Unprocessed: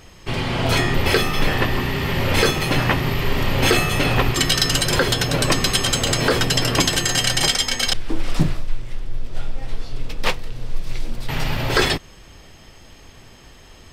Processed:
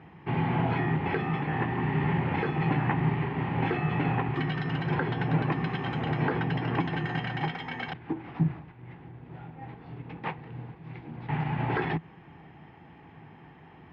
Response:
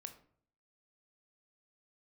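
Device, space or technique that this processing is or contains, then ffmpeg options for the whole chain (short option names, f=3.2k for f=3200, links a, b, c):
bass amplifier: -af "acompressor=threshold=-20dB:ratio=6,highpass=f=84:w=0.5412,highpass=f=84:w=1.3066,equalizer=f=90:t=q:w=4:g=-4,equalizer=f=160:t=q:w=4:g=10,equalizer=f=310:t=q:w=4:g=4,equalizer=f=570:t=q:w=4:g=-10,equalizer=f=820:t=q:w=4:g=9,equalizer=f=1.3k:t=q:w=4:g=-4,lowpass=f=2.2k:w=0.5412,lowpass=f=2.2k:w=1.3066,volume=-4dB"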